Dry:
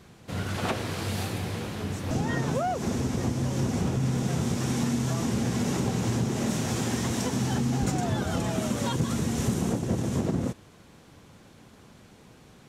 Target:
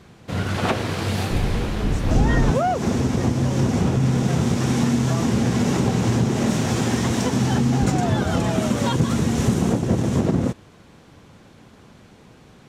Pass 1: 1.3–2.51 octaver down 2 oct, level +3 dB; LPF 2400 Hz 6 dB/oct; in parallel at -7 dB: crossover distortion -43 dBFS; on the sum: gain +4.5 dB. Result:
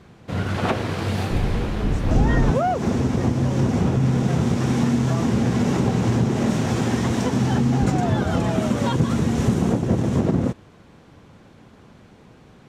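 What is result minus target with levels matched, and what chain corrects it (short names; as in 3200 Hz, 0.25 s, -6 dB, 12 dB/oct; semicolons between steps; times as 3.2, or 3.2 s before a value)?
4000 Hz band -3.5 dB
1.3–2.51 octaver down 2 oct, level +3 dB; LPF 5300 Hz 6 dB/oct; in parallel at -7 dB: crossover distortion -43 dBFS; on the sum: gain +4.5 dB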